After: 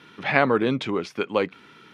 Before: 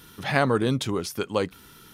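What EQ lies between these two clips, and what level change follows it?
BPF 190–3100 Hz; bell 2300 Hz +6.5 dB 0.41 oct; +2.5 dB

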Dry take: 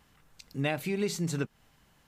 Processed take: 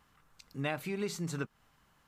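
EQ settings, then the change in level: bell 1200 Hz +7.5 dB 0.81 oct; -5.5 dB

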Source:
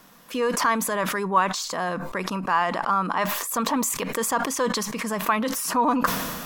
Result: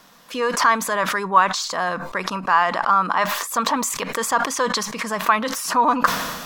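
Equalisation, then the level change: dynamic EQ 1400 Hz, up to +4 dB, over -36 dBFS, Q 1.1; EQ curve 340 Hz 0 dB, 640 Hz +4 dB, 2700 Hz +4 dB, 4000 Hz +7 dB, 6100 Hz +5 dB, 12000 Hz -1 dB; -1.5 dB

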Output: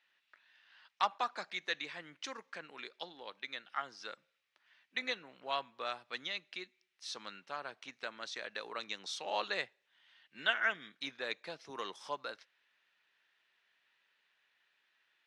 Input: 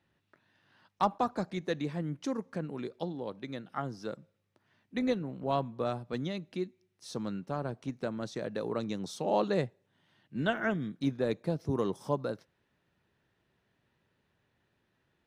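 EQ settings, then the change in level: Chebyshev high-pass 2500 Hz, order 2; air absorption 62 m; tilt -3 dB/oct; +13.0 dB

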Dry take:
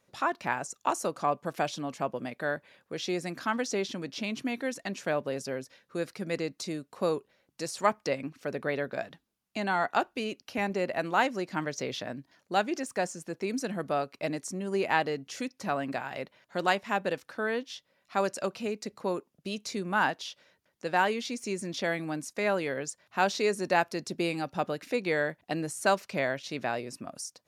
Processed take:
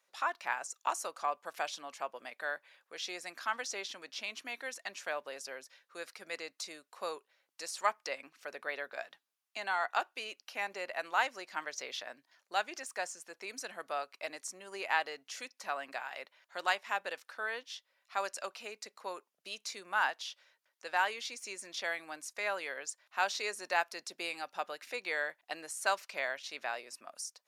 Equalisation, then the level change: HPF 850 Hz 12 dB/oct; -2.5 dB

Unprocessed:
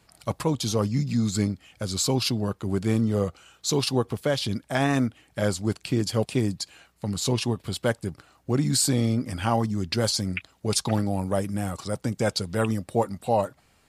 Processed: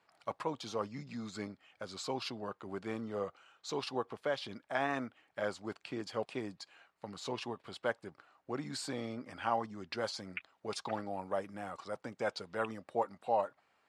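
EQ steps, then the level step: LPF 1100 Hz 12 dB/oct; differentiator; low shelf 190 Hz -3.5 dB; +13.5 dB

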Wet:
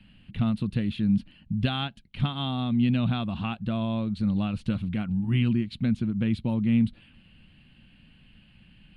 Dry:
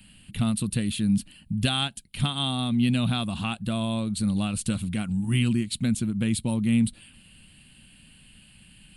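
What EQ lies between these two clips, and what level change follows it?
air absorption 300 m; 0.0 dB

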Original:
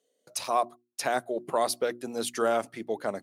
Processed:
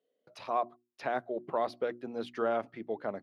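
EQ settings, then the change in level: air absorption 330 m; -3.5 dB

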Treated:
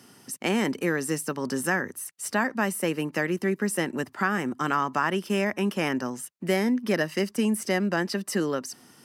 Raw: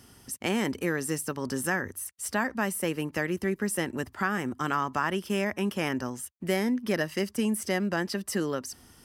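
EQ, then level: HPF 140 Hz 24 dB/oct; high shelf 10000 Hz -5 dB; notch 3300 Hz, Q 21; +3.0 dB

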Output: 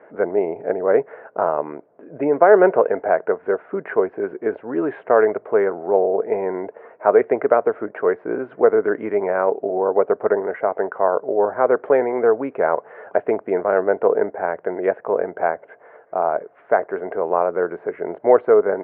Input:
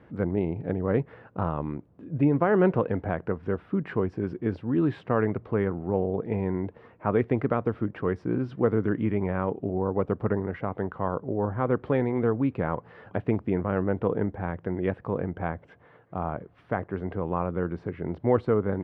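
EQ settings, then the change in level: air absorption 52 m; speaker cabinet 390–2400 Hz, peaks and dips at 420 Hz +9 dB, 640 Hz +6 dB, 920 Hz +3 dB, 1500 Hz +7 dB, 2100 Hz +4 dB; bell 650 Hz +7 dB 0.75 oct; +3.5 dB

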